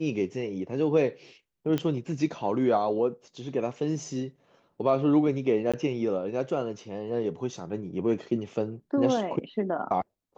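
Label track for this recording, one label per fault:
1.780000	1.780000	click −16 dBFS
5.720000	5.740000	drop-out 16 ms

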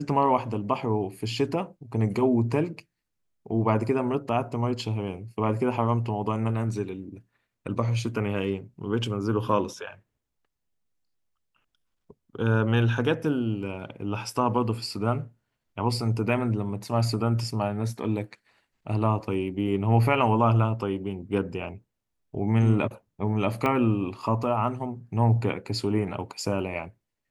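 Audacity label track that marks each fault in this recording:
23.660000	23.660000	click −14 dBFS

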